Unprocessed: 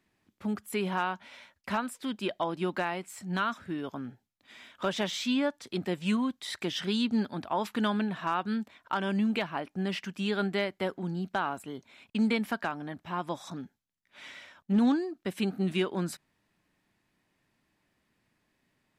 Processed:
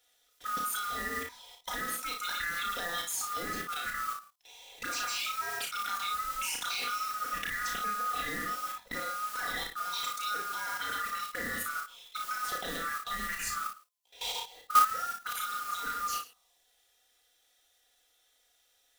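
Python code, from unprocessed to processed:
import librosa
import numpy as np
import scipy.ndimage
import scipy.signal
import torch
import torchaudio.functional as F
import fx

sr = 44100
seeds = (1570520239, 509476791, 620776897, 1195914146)

p1 = fx.band_swap(x, sr, width_hz=1000)
p2 = fx.env_phaser(p1, sr, low_hz=190.0, high_hz=3400.0, full_db=-26.0)
p3 = fx.high_shelf(p2, sr, hz=3000.0, db=9.5)
p4 = p3 + 0.71 * np.pad(p3, (int(4.1 * sr / 1000.0), 0))[:len(p3)]
p5 = p4 + 10.0 ** (-14.0 / 20.0) * np.pad(p4, (int(106 * sr / 1000.0), 0))[:len(p4)]
p6 = fx.over_compress(p5, sr, threshold_db=-32.0, ratio=-0.5)
p7 = p5 + (p6 * librosa.db_to_amplitude(1.0))
p8 = fx.mod_noise(p7, sr, seeds[0], snr_db=11)
p9 = fx.level_steps(p8, sr, step_db=18)
p10 = fx.low_shelf(p9, sr, hz=460.0, db=-6.0)
y = p10 + fx.room_early_taps(p10, sr, ms=(33, 57), db=(-4.0, -6.5), dry=0)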